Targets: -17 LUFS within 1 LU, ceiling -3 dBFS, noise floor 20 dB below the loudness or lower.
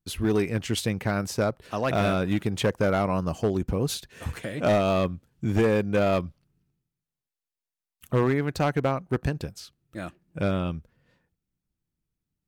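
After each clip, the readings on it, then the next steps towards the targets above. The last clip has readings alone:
clipped 1.3%; flat tops at -16.5 dBFS; loudness -26.5 LUFS; peak -16.5 dBFS; loudness target -17.0 LUFS
-> clip repair -16.5 dBFS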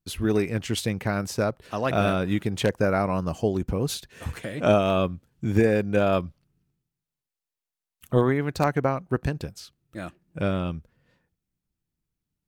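clipped 0.0%; loudness -25.5 LUFS; peak -7.5 dBFS; loudness target -17.0 LUFS
-> gain +8.5 dB; limiter -3 dBFS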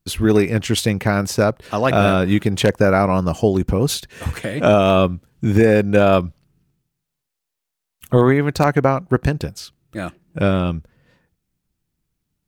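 loudness -17.5 LUFS; peak -3.0 dBFS; noise floor -81 dBFS

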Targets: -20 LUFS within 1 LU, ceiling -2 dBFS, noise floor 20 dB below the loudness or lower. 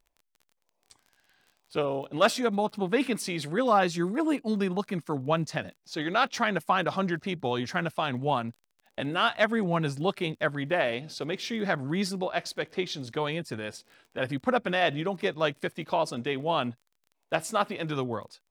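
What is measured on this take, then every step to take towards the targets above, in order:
ticks 30/s; loudness -29.0 LUFS; peak -9.0 dBFS; loudness target -20.0 LUFS
-> de-click; gain +9 dB; limiter -2 dBFS

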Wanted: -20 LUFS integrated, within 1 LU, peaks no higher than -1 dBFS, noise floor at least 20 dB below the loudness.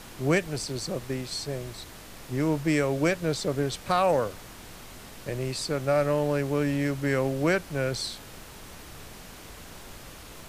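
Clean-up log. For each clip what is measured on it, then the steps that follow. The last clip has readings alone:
noise floor -45 dBFS; noise floor target -48 dBFS; loudness -27.5 LUFS; peak -10.0 dBFS; loudness target -20.0 LUFS
-> noise print and reduce 6 dB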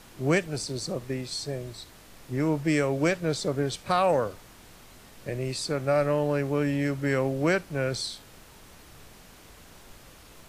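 noise floor -51 dBFS; loudness -27.5 LUFS; peak -10.0 dBFS; loudness target -20.0 LUFS
-> gain +7.5 dB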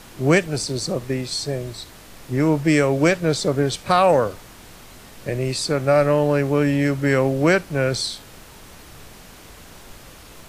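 loudness -20.0 LUFS; peak -2.5 dBFS; noise floor -44 dBFS

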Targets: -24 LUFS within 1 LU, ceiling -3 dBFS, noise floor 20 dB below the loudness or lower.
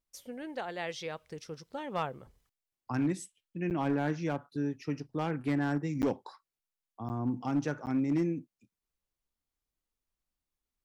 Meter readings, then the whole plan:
clipped 0.6%; flat tops at -23.0 dBFS; dropouts 4; longest dropout 9.2 ms; loudness -34.0 LUFS; peak -23.0 dBFS; loudness target -24.0 LUFS
-> clip repair -23 dBFS; interpolate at 3.7/6.02/7.09/7.86, 9.2 ms; gain +10 dB

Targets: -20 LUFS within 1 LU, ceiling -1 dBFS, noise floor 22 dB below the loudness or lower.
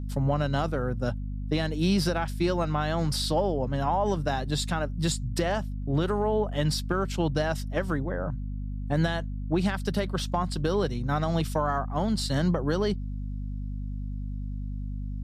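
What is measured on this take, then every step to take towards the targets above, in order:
hum 50 Hz; harmonics up to 250 Hz; hum level -30 dBFS; loudness -28.5 LUFS; peak -12.5 dBFS; loudness target -20.0 LUFS
-> notches 50/100/150/200/250 Hz; gain +8.5 dB

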